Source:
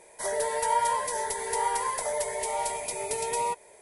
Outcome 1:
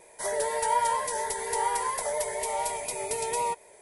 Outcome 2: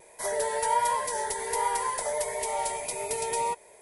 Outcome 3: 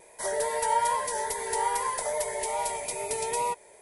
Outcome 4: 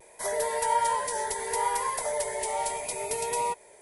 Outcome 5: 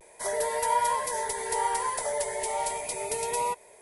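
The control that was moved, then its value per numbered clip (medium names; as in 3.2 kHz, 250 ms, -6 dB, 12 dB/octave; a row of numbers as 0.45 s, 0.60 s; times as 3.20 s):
vibrato, rate: 4.2 Hz, 1.4 Hz, 2.4 Hz, 0.71 Hz, 0.35 Hz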